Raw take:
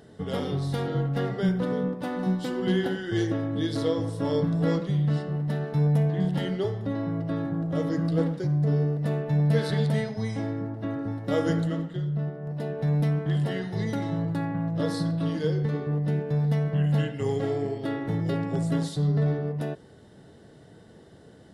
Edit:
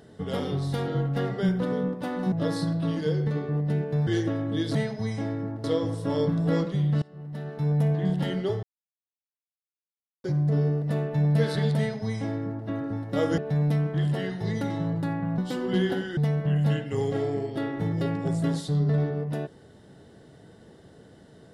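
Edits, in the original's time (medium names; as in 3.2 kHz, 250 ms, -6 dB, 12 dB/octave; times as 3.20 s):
2.32–3.11 s: swap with 14.70–16.45 s
5.17–6.07 s: fade in, from -23.5 dB
6.78–8.39 s: mute
9.93–10.82 s: copy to 3.79 s
11.53–12.70 s: delete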